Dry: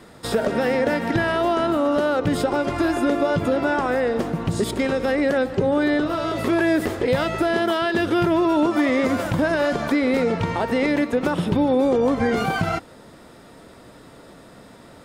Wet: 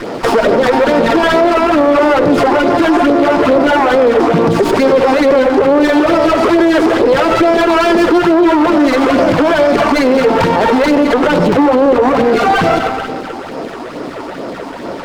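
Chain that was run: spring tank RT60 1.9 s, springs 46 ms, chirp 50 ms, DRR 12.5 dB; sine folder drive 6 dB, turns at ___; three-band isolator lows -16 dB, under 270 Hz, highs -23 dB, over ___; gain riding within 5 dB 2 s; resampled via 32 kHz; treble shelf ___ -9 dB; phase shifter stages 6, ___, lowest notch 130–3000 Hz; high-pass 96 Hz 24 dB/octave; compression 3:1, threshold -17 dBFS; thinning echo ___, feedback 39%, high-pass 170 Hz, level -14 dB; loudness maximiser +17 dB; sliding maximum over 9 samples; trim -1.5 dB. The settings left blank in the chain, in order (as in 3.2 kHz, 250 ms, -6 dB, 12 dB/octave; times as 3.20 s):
-7 dBFS, 5.7 kHz, 9.4 kHz, 2.3 Hz, 96 ms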